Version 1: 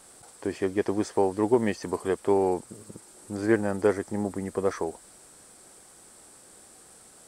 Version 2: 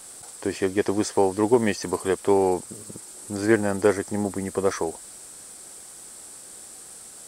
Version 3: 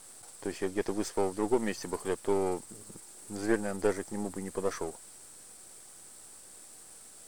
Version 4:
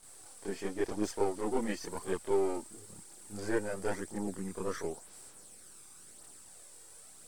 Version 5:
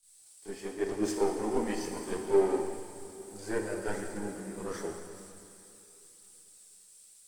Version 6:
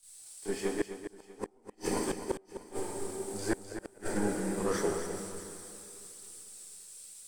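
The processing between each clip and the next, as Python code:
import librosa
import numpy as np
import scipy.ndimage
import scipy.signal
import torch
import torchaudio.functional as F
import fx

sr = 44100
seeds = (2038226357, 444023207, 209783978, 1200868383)

y1 = fx.high_shelf(x, sr, hz=2900.0, db=8.0)
y1 = F.gain(torch.from_numpy(y1), 3.0).numpy()
y2 = np.where(y1 < 0.0, 10.0 ** (-7.0 / 20.0) * y1, y1)
y2 = F.gain(torch.from_numpy(y2), -6.0).numpy()
y3 = fx.chorus_voices(y2, sr, voices=2, hz=0.48, base_ms=28, depth_ms=2.3, mix_pct=65)
y4 = fx.rev_plate(y3, sr, seeds[0], rt60_s=4.7, hf_ratio=0.8, predelay_ms=0, drr_db=1.0)
y4 = fx.band_widen(y4, sr, depth_pct=70)
y4 = F.gain(torch.from_numpy(y4), -1.5).numpy()
y5 = fx.gate_flip(y4, sr, shuts_db=-24.0, range_db=-42)
y5 = fx.echo_multitap(y5, sr, ms=(255, 644), db=(-10.0, -20.0))
y5 = F.gain(torch.from_numpy(y5), 6.5).numpy()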